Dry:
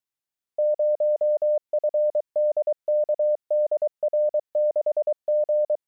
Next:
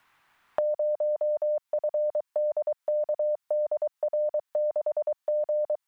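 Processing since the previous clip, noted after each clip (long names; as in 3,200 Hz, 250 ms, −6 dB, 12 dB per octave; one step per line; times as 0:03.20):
low shelf with overshoot 730 Hz −9.5 dB, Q 1.5
multiband upward and downward compressor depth 100%
level +4.5 dB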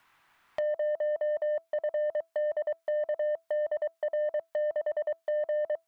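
tuned comb filter 330 Hz, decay 0.21 s, harmonics all, mix 40%
soft clipping −28.5 dBFS, distortion −18 dB
level +4 dB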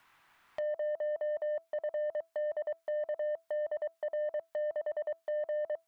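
brickwall limiter −30.5 dBFS, peak gain reduction 6 dB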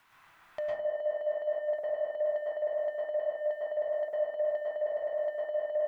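dense smooth reverb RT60 0.66 s, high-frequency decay 0.4×, pre-delay 95 ms, DRR −5 dB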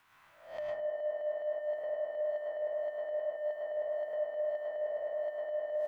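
peak hold with a rise ahead of every peak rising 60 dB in 0.49 s
level −4.5 dB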